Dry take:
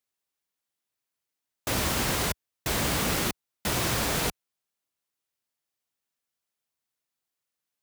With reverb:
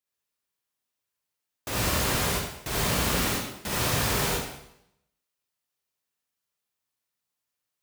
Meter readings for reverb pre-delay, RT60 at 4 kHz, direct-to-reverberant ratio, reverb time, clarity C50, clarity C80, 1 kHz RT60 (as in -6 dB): 39 ms, 0.75 s, -5.0 dB, 0.80 s, -3.5 dB, 2.0 dB, 0.80 s